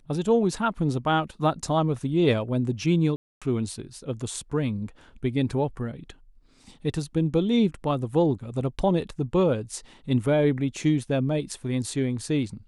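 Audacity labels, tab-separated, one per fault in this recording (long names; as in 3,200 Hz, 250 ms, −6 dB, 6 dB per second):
3.160000	3.420000	drop-out 256 ms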